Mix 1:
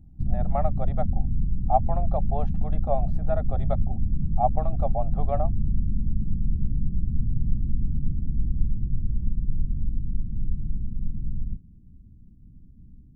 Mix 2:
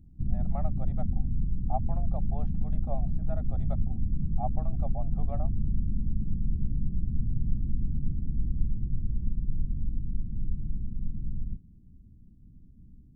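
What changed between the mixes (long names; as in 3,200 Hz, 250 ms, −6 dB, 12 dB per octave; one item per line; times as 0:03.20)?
speech −11.5 dB
master: add low-shelf EQ 320 Hz −4 dB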